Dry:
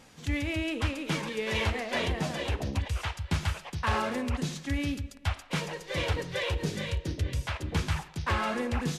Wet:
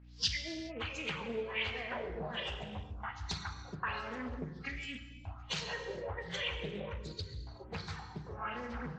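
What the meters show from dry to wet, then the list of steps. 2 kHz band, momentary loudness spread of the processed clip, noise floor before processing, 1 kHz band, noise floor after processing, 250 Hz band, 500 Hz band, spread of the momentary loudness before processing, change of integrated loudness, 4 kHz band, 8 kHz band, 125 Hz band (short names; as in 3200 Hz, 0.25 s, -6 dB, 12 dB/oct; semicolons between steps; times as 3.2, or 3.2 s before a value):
-6.5 dB, 9 LU, -51 dBFS, -8.0 dB, -51 dBFS, -11.5 dB, -7.5 dB, 5 LU, -8.0 dB, -3.0 dB, -7.0 dB, -13.0 dB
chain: nonlinear frequency compression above 2800 Hz 1.5:1; recorder AGC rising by 48 dB/s; spectral noise reduction 20 dB; bell 6300 Hz +5.5 dB 1.7 oct; compressor, threshold -30 dBFS, peak gain reduction 6.5 dB; hum 60 Hz, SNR 12 dB; LFO low-pass sine 1.3 Hz 390–5500 Hz; pre-emphasis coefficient 0.8; non-linear reverb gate 0.45 s falling, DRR 5.5 dB; Doppler distortion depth 0.37 ms; gain +4 dB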